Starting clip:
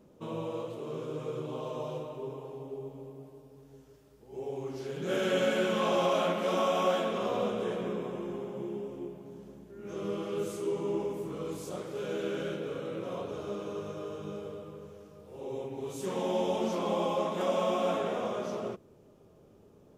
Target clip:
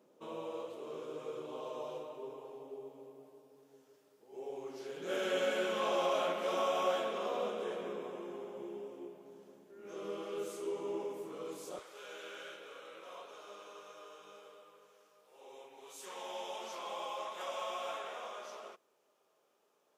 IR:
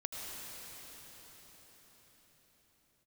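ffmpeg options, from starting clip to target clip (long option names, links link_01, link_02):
-af "asetnsamples=nb_out_samples=441:pad=0,asendcmd='11.79 highpass f 930',highpass=360,volume=-4dB"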